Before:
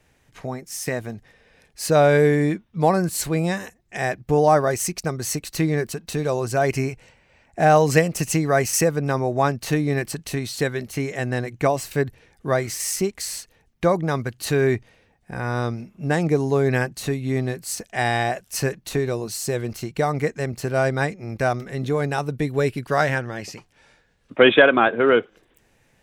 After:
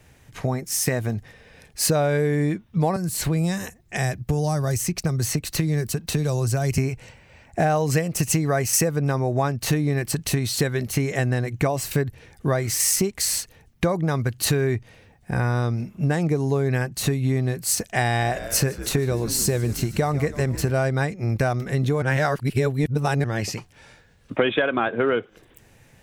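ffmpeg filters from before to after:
ffmpeg -i in.wav -filter_complex "[0:a]asettb=1/sr,asplit=3[link_01][link_02][link_03];[link_01]atrim=end=2.964[link_04];[link_02]atrim=start=2.96:end=6.78,asetpts=PTS-STARTPTS,afade=type=in:duration=0.004:curve=qsin,afade=type=out:start_time=3.816:duration=0.004:curve=qsin,acrossover=split=180|4000[link_05][link_06][link_07];[link_05]acompressor=threshold=-29dB:ratio=4[link_08];[link_06]acompressor=threshold=-32dB:ratio=4[link_09];[link_07]acompressor=threshold=-36dB:ratio=4[link_10];[link_08][link_09][link_10]amix=inputs=3:normalize=0[link_11];[link_03]atrim=start=6.776[link_12];[link_04][link_11]acrossfade=duration=0.004:curve1=hsin:curve2=qsin[link_13];[link_13][link_12]acrossfade=duration=0.004:curve1=qsin:curve2=hsin,asettb=1/sr,asplit=3[link_14][link_15][link_16];[link_14]atrim=end=18.064[link_17];[link_15]atrim=start=18.06:end=20.71,asetpts=PTS-STARTPTS,afade=type=in:duration=0.004:curve=qsin,afade=type=out:start_time=2.646:duration=0.004:curve=qsin,asplit=8[link_18][link_19][link_20][link_21][link_22][link_23][link_24][link_25];[link_19]adelay=151,afreqshift=-72,volume=-17dB[link_26];[link_20]adelay=302,afreqshift=-144,volume=-20.7dB[link_27];[link_21]adelay=453,afreqshift=-216,volume=-24.5dB[link_28];[link_22]adelay=604,afreqshift=-288,volume=-28.2dB[link_29];[link_23]adelay=755,afreqshift=-360,volume=-32dB[link_30];[link_24]adelay=906,afreqshift=-432,volume=-35.7dB[link_31];[link_25]adelay=1057,afreqshift=-504,volume=-39.5dB[link_32];[link_18][link_26][link_27][link_28][link_29][link_30][link_31][link_32]amix=inputs=8:normalize=0,atrim=end_sample=116865[link_33];[link_16]atrim=start=20.706[link_34];[link_17][link_33]acrossfade=duration=0.004:curve1=hsin:curve2=qsin[link_35];[link_35][link_34]acrossfade=duration=0.004:curve1=qsin:curve2=hsin,asplit=3[link_36][link_37][link_38];[link_36]atrim=end=22.022[link_39];[link_37]atrim=start=22.018:end=23.242,asetpts=PTS-STARTPTS,areverse[link_40];[link_38]atrim=start=23.238[link_41];[link_39][link_40]acrossfade=duration=0.004:curve1=hsin:curve2=hsin[link_42];[link_42][link_41]acrossfade=duration=0.004:curve1=hsin:curve2=hsin,equalizer=frequency=100:width_type=o:width=1.4:gain=7,acompressor=threshold=-24dB:ratio=6,highshelf=frequency=9500:gain=5,volume=5.5dB" out.wav

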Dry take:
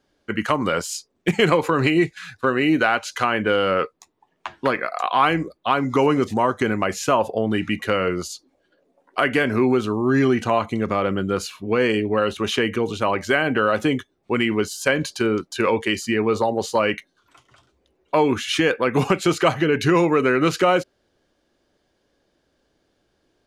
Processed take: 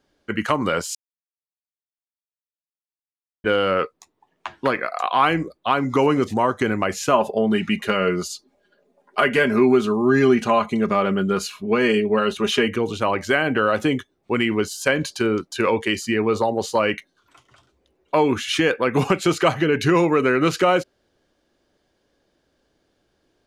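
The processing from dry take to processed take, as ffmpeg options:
ffmpeg -i in.wav -filter_complex "[0:a]asettb=1/sr,asplit=3[link_01][link_02][link_03];[link_01]atrim=end=7.134[link_04];[link_02]atrim=start=7.13:end=12.68,asetpts=PTS-STARTPTS,afade=type=in:duration=0.004:curve=qsin,afade=type=out:start_time=5.546:duration=0.004:curve=qsin,aecho=1:1:4.9:0.65,atrim=end_sample=244755[link_05];[link_03]atrim=start=12.676[link_06];[link_04][link_05]acrossfade=duration=0.004:curve1=hsin:curve2=qsin[link_07];[link_07][link_06]acrossfade=duration=0.004:curve1=qsin:curve2=hsin,asplit=3[link_08][link_09][link_10];[link_08]atrim=end=0.95,asetpts=PTS-STARTPTS,afade=type=out:start_time=0.946:duration=0.004:curve=hsin[link_11];[link_09]atrim=start=0.95:end=3.44,asetpts=PTS-STARTPTS,volume=0[link_12];[link_10]atrim=start=3.44,asetpts=PTS-STARTPTS,afade=type=in:duration=0.004:curve=hsin[link_13];[link_11][link_12][link_13]concat=n=3:v=0:a=1" out.wav

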